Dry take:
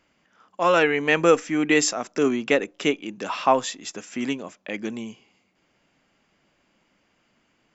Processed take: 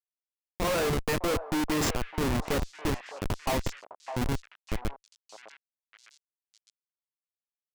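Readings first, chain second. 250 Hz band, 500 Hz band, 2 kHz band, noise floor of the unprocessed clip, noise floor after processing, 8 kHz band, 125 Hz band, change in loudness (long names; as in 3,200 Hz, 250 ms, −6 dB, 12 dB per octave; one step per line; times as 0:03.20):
−7.0 dB, −9.5 dB, −10.5 dB, −68 dBFS, below −85 dBFS, can't be measured, +5.0 dB, −8.0 dB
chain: double-tracking delay 29 ms −9 dB
comparator with hysteresis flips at −20.5 dBFS
echo through a band-pass that steps 607 ms, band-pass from 800 Hz, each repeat 1.4 octaves, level −7 dB
level −1.5 dB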